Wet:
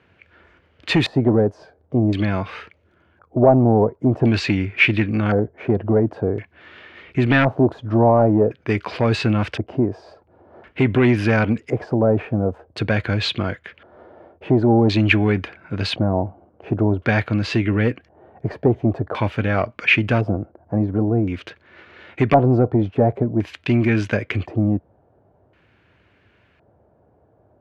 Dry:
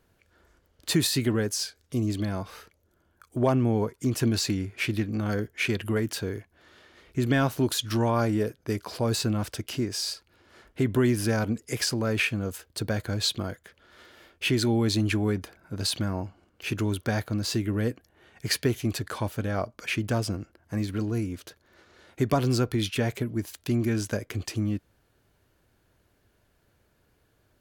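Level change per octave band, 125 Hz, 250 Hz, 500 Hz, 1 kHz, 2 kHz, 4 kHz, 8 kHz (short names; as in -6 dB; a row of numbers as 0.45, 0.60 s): +8.0 dB, +8.5 dB, +10.5 dB, +10.5 dB, +10.0 dB, +1.5 dB, under -10 dB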